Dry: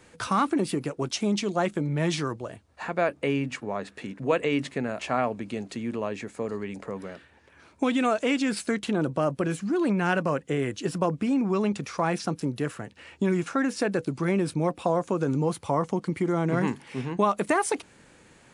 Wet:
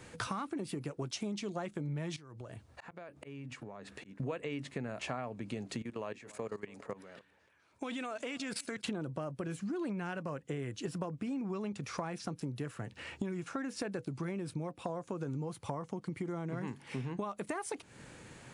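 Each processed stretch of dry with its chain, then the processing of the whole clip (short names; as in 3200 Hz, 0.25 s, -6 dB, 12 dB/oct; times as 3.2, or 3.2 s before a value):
2.16–4.2 auto swell 0.464 s + compressor 10:1, threshold -45 dBFS
5.82–8.85 low shelf 340 Hz -10 dB + level quantiser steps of 18 dB + echo 0.281 s -24 dB
whole clip: bell 120 Hz +7 dB 0.62 oct; compressor 8:1, threshold -37 dBFS; gain +1.5 dB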